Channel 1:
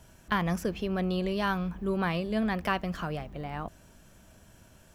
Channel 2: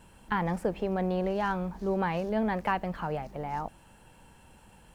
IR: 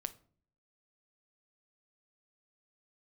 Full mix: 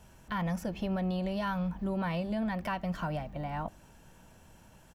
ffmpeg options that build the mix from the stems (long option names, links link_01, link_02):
-filter_complex "[0:a]volume=-6dB,asplit=2[link_01][link_02];[link_02]volume=-6dB[link_03];[1:a]lowpass=2800,volume=-1,adelay=2.9,volume=-5dB[link_04];[2:a]atrim=start_sample=2205[link_05];[link_03][link_05]afir=irnorm=-1:irlink=0[link_06];[link_01][link_04][link_06]amix=inputs=3:normalize=0,alimiter=level_in=0.5dB:limit=-24dB:level=0:latency=1:release=152,volume=-0.5dB"